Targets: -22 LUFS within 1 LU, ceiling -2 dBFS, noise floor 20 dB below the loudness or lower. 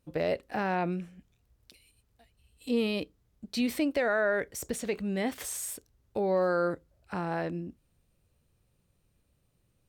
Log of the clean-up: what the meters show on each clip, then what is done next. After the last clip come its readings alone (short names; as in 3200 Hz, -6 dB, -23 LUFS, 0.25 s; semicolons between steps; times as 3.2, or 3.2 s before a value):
loudness -31.0 LUFS; peak -17.0 dBFS; loudness target -22.0 LUFS
-> gain +9 dB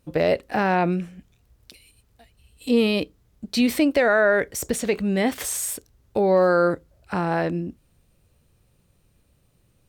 loudness -22.5 LUFS; peak -8.0 dBFS; noise floor -64 dBFS